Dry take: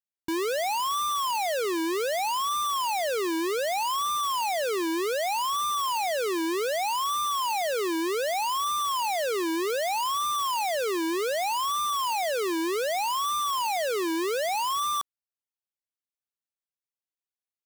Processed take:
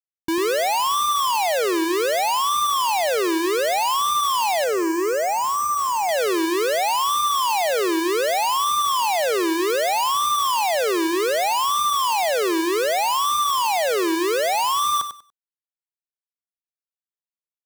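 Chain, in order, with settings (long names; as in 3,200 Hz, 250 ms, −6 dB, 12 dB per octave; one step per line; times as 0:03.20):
0:04.64–0:06.09: low-pass filter 2,200 Hz 12 dB per octave
in parallel at −7 dB: hard clipping −40 dBFS, distortion −22 dB
on the sum: bit reduction 5 bits
repeating echo 96 ms, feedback 20%, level −9.5 dB
level +2.5 dB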